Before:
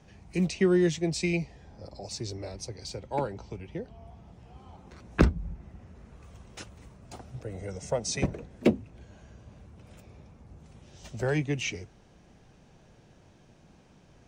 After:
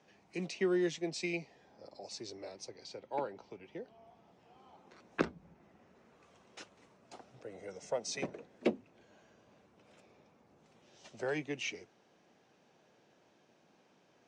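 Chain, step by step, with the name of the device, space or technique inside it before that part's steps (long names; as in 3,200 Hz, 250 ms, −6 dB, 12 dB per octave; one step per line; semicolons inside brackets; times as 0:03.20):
0:02.71–0:03.63: high-frequency loss of the air 63 metres
public-address speaker with an overloaded transformer (saturating transformer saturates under 180 Hz; band-pass filter 300–6,400 Hz)
level −5.5 dB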